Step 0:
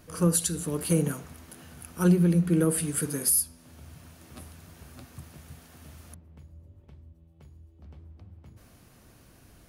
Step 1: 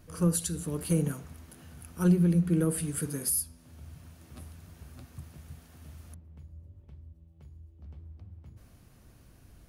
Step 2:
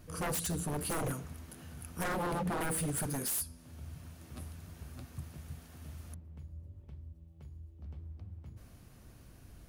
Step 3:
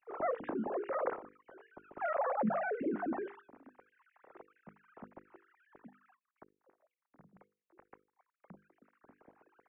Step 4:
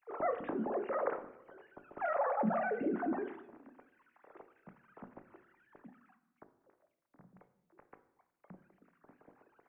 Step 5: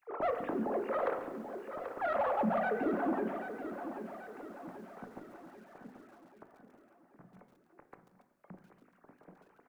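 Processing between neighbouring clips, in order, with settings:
low-shelf EQ 140 Hz +9.5 dB; level −5.5 dB
wave folding −30 dBFS; level +1 dB
three sine waves on the formant tracks; Bessel low-pass filter 1,300 Hz, order 8; mains-hum notches 50/100/150/200/250/300/350/400/450/500 Hz
rectangular room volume 320 cubic metres, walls mixed, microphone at 0.37 metres
soft clipping −26.5 dBFS, distortion −20 dB; repeating echo 785 ms, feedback 50%, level −9.5 dB; feedback echo at a low word length 140 ms, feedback 55%, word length 10 bits, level −12.5 dB; level +2.5 dB

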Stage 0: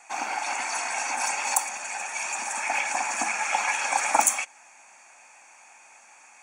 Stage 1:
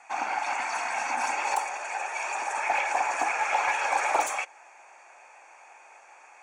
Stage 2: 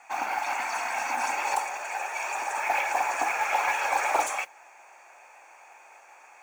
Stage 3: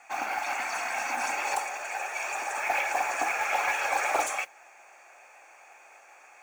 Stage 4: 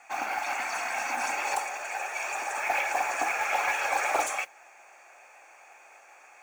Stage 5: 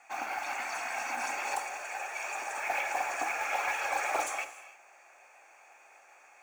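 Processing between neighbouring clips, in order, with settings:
gain into a clipping stage and back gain 20 dB; high-pass filter sweep 62 Hz → 410 Hz, 0:00.66–0:01.52; mid-hump overdrive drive 8 dB, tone 1,400 Hz, clips at −9 dBFS
noise that follows the level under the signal 24 dB
parametric band 940 Hz −8.5 dB 0.22 octaves
no processing that can be heard
reverb whose tail is shaped and stops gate 340 ms flat, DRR 11.5 dB; level −4.5 dB

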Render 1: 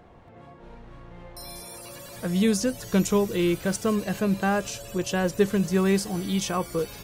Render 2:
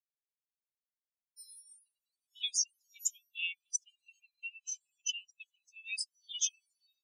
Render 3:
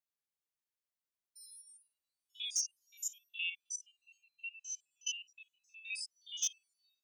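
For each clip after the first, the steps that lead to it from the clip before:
Butterworth high-pass 2,400 Hz 48 dB per octave; every bin expanded away from the loudest bin 4 to 1
spectrum averaged block by block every 50 ms; gain into a clipping stage and back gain 25.5 dB

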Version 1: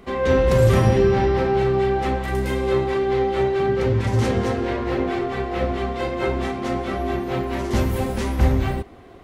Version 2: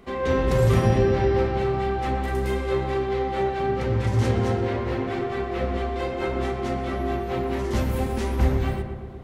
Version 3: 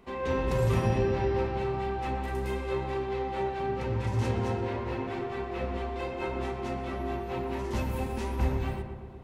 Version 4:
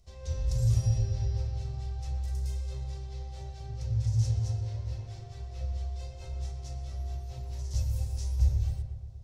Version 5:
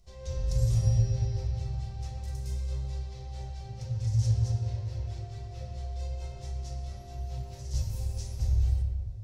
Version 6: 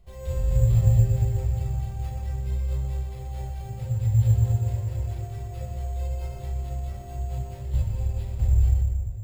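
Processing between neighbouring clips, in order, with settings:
feedback echo with a low-pass in the loop 121 ms, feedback 66%, low-pass 1,900 Hz, level −6 dB; level −4 dB
hollow resonant body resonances 930/2,600 Hz, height 10 dB, ringing for 40 ms; level −7 dB
drawn EQ curve 110 Hz 0 dB, 240 Hz −30 dB, 350 Hz −29 dB, 640 Hz −16 dB, 920 Hz −29 dB, 2,600 Hz −22 dB, 5,600 Hz +3 dB, 12,000 Hz −8 dB; level +4 dB
rectangular room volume 1,100 cubic metres, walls mixed, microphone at 0.93 metres
bad sample-rate conversion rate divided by 6×, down filtered, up hold; level +6 dB

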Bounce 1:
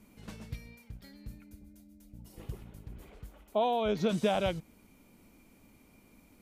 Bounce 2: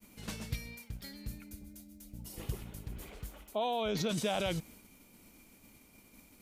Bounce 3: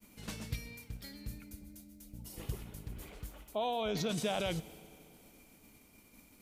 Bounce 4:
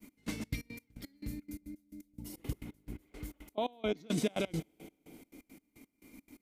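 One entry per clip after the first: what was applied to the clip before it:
downward expander −55 dBFS; high-shelf EQ 2,400 Hz +9 dB; in parallel at +1 dB: compressor whose output falls as the input rises −34 dBFS, ratio −0.5; on the sum: level −7 dB
feedback delay network reverb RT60 3 s, high-frequency decay 0.8×, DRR 16.5 dB; level −1.5 dB
gate pattern "x..xx.x.x.." 172 BPM −24 dB; hollow resonant body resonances 290/2,100 Hz, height 13 dB, ringing for 30 ms

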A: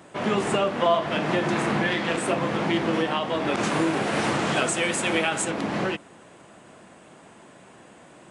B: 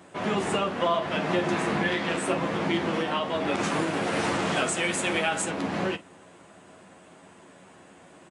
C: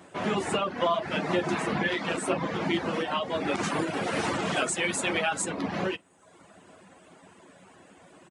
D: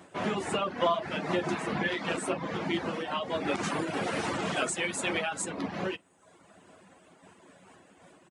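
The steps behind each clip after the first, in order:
ambience of single reflections 11 ms −6.5 dB, 47 ms −18 dB; level −3 dB
reverb reduction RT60 0.81 s
amplitude modulation by smooth noise, depth 50%

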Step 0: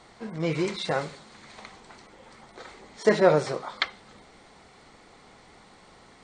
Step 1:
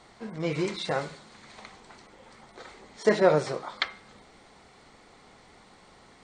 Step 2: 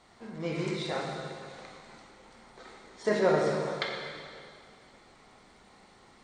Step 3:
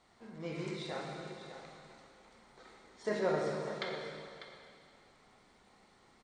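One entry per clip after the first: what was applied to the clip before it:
hum removal 162.7 Hz, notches 16; level −1.5 dB
dense smooth reverb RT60 2.2 s, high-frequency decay 0.95×, DRR −1.5 dB; level −6.5 dB
single-tap delay 597 ms −11.5 dB; level −7.5 dB

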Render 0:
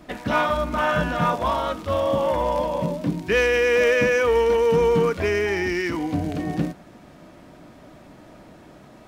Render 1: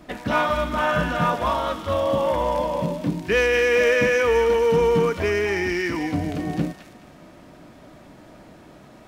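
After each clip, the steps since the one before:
delay with a high-pass on its return 212 ms, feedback 30%, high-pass 1,500 Hz, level −6.5 dB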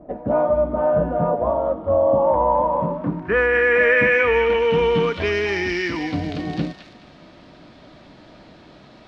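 low-pass filter sweep 620 Hz → 4,200 Hz, 0:01.76–0:05.45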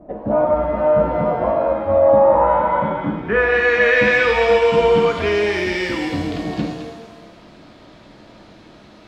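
reverb with rising layers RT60 1.1 s, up +7 semitones, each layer −8 dB, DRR 3.5 dB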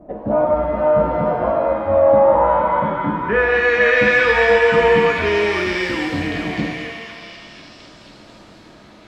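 echo through a band-pass that steps 494 ms, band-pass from 1,400 Hz, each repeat 0.7 octaves, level −3 dB

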